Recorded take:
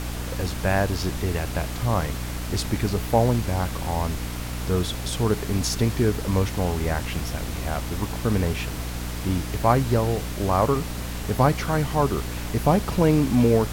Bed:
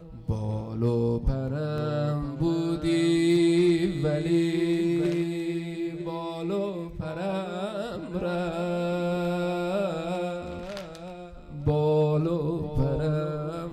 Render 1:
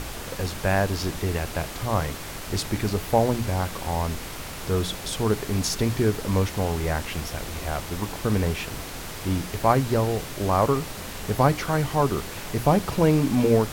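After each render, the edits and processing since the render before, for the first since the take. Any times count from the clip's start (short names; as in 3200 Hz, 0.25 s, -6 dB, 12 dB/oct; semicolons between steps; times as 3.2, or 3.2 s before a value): notches 60/120/180/240/300 Hz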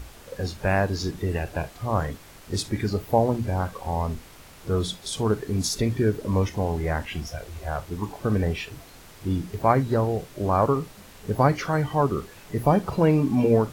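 noise print and reduce 12 dB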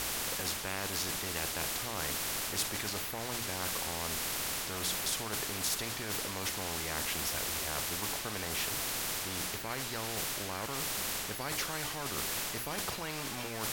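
reverse; compressor, threshold -28 dBFS, peak gain reduction 14 dB; reverse; spectral compressor 4:1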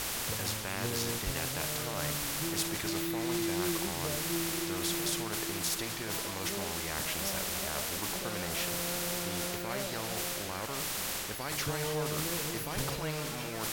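add bed -13 dB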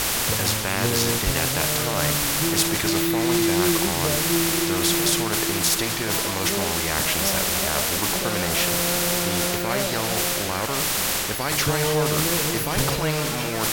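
gain +12 dB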